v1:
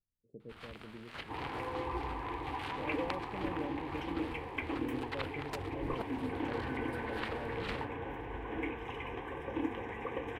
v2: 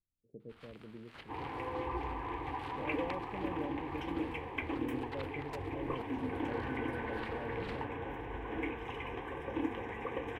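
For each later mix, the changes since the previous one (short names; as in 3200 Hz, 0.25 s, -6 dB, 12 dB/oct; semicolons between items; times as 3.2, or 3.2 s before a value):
first sound -7.5 dB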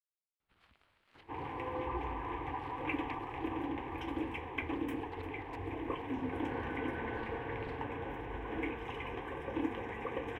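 speech: muted; first sound -10.0 dB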